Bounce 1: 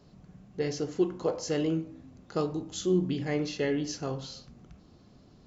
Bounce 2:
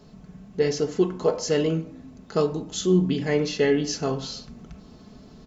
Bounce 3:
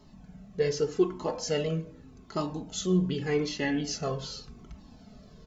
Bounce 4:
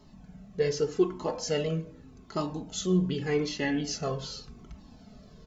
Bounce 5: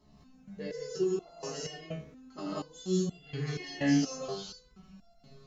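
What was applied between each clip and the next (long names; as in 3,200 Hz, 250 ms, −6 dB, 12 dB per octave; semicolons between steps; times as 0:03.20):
comb filter 4.6 ms, depth 48%; in parallel at +0.5 dB: speech leveller 2 s
flanger whose copies keep moving one way falling 0.85 Hz
no processing that can be heard
reverb whose tail is shaped and stops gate 220 ms rising, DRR −7 dB; step-sequenced resonator 4.2 Hz 71–690 Hz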